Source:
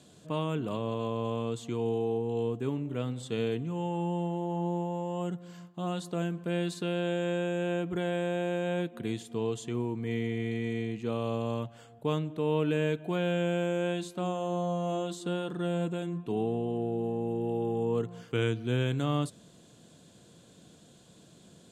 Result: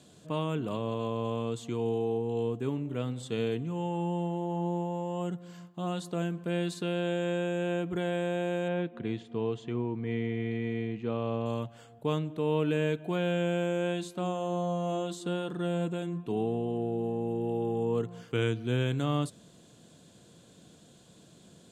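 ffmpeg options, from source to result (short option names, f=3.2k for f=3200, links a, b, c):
-filter_complex "[0:a]asettb=1/sr,asplit=3[a][b][c];[a]atrim=end=8.684[d];[b]atrim=start=8.68:end=11.46,asetpts=PTS-STARTPTS,afade=t=in:d=0.004:c=qsin,afade=t=out:st=2.776:d=0.004:c=qsin,lowpass=3k[e];[c]atrim=start=11.456[f];[d][e]acrossfade=d=0.004:c1=hsin:c2=qsin[g];[g][f]acrossfade=d=0.004:c1=qsin:c2=hsin"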